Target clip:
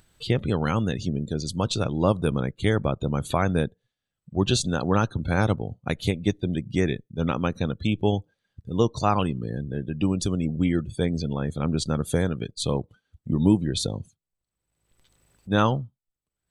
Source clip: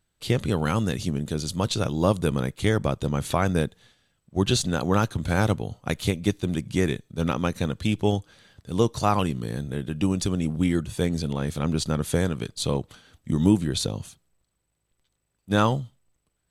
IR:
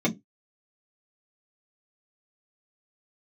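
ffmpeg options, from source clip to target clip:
-af "afftdn=nr=27:nf=-39,acompressor=mode=upward:threshold=0.0251:ratio=2.5"

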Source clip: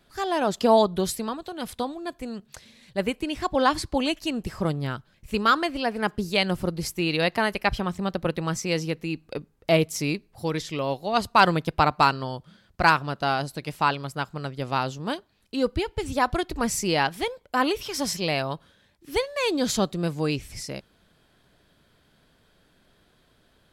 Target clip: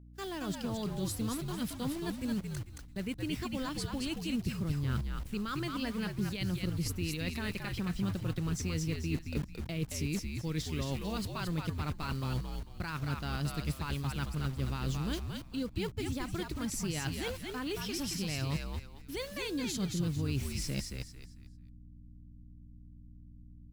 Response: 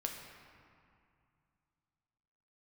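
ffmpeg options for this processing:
-filter_complex "[0:a]dynaudnorm=f=440:g=7:m=3.55,alimiter=limit=0.237:level=0:latency=1:release=114,equalizer=f=700:w=0.98:g=-11.5,acrusher=bits=6:mix=0:aa=0.000001,agate=range=0.0708:threshold=0.0126:ratio=16:detection=peak,areverse,acompressor=threshold=0.0224:ratio=6,areverse,highpass=96,lowshelf=f=200:g=12,aeval=exprs='val(0)+0.00398*(sin(2*PI*60*n/s)+sin(2*PI*2*60*n/s)/2+sin(2*PI*3*60*n/s)/3+sin(2*PI*4*60*n/s)/4+sin(2*PI*5*60*n/s)/5)':c=same,asplit=5[s0][s1][s2][s3][s4];[s1]adelay=223,afreqshift=-77,volume=0.631[s5];[s2]adelay=446,afreqshift=-154,volume=0.188[s6];[s3]adelay=669,afreqshift=-231,volume=0.0569[s7];[s4]adelay=892,afreqshift=-308,volume=0.017[s8];[s0][s5][s6][s7][s8]amix=inputs=5:normalize=0,volume=0.631"

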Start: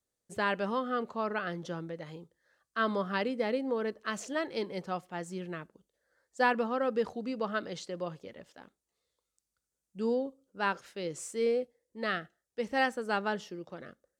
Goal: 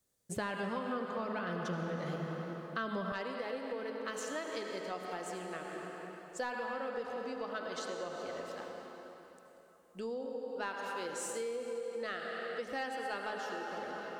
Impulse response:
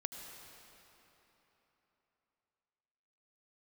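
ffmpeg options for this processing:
-filter_complex "[0:a]highshelf=f=8600:g=6[s0];[1:a]atrim=start_sample=2205[s1];[s0][s1]afir=irnorm=-1:irlink=0,asoftclip=type=tanh:threshold=0.106,bandreject=f=107.7:t=h:w=4,bandreject=f=215.4:t=h:w=4,bandreject=f=323.1:t=h:w=4,bandreject=f=430.8:t=h:w=4,bandreject=f=538.5:t=h:w=4,bandreject=f=646.2:t=h:w=4,bandreject=f=753.9:t=h:w=4,bandreject=f=861.6:t=h:w=4,bandreject=f=969.3:t=h:w=4,bandreject=f=1077:t=h:w=4,bandreject=f=1184.7:t=h:w=4,bandreject=f=1292.4:t=h:w=4,bandreject=f=1400.1:t=h:w=4,bandreject=f=1507.8:t=h:w=4,bandreject=f=1615.5:t=h:w=4,bandreject=f=1723.2:t=h:w=4,bandreject=f=1830.9:t=h:w=4,bandreject=f=1938.6:t=h:w=4,bandreject=f=2046.3:t=h:w=4,bandreject=f=2154:t=h:w=4,bandreject=f=2261.7:t=h:w=4,bandreject=f=2369.4:t=h:w=4,bandreject=f=2477.1:t=h:w=4,bandreject=f=2584.8:t=h:w=4,bandreject=f=2692.5:t=h:w=4,bandreject=f=2800.2:t=h:w=4,bandreject=f=2907.9:t=h:w=4,bandreject=f=3015.6:t=h:w=4,bandreject=f=3123.3:t=h:w=4,bandreject=f=3231:t=h:w=4,bandreject=f=3338.7:t=h:w=4,acompressor=threshold=0.00794:ratio=6,asetnsamples=n=441:p=0,asendcmd='3.12 equalizer g -12',equalizer=f=150:w=1.2:g=5,volume=2.11"

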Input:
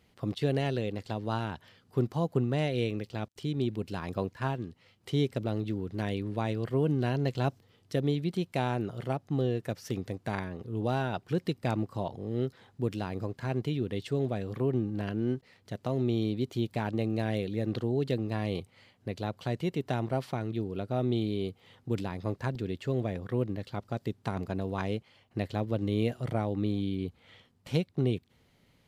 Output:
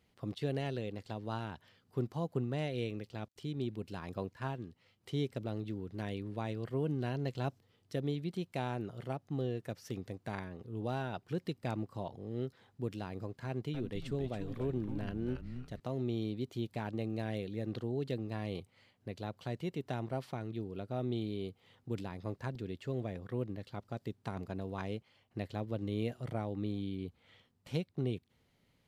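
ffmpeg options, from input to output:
-filter_complex "[0:a]asettb=1/sr,asplit=3[s0][s1][s2];[s0]atrim=end=13.464[s3];[s1]atrim=start=13.46:end=15.8,asetpts=PTS-STARTPTS,afade=t=in:d=0.004:c=qsin,afade=t=out:st=2.336:d=0.004:c=qsin,asplit=5[s4][s5][s6][s7][s8];[s5]adelay=278,afreqshift=-130,volume=0.473[s9];[s6]adelay=556,afreqshift=-260,volume=0.146[s10];[s7]adelay=834,afreqshift=-390,volume=0.0457[s11];[s8]adelay=1112,afreqshift=-520,volume=0.0141[s12];[s4][s9][s10][s11][s12]amix=inputs=5:normalize=0,atrim=end_sample=103194[s13];[s2]atrim=start=15.796[s14];[s3][s13]acrossfade=d=0.004:c1=hsin:c2=qsin[s15];[s15][s14]acrossfade=d=0.004:c1=qsin:c2=hsin,volume=0.447"

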